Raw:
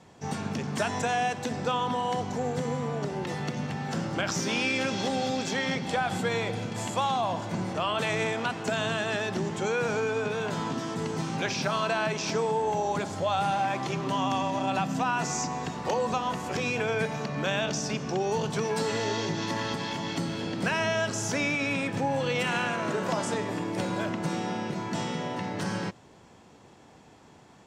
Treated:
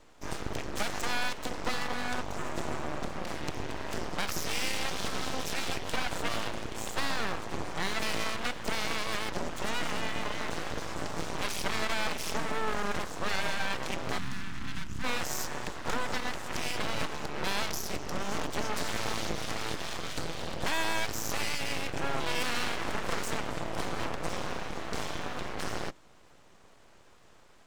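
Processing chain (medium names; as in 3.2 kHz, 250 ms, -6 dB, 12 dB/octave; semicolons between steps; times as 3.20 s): Chebyshev shaper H 4 -12 dB, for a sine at -16.5 dBFS; full-wave rectifier; 14.18–15.04 s: FFT filter 240 Hz 0 dB, 500 Hz -25 dB, 1.4 kHz -7 dB; trim -2 dB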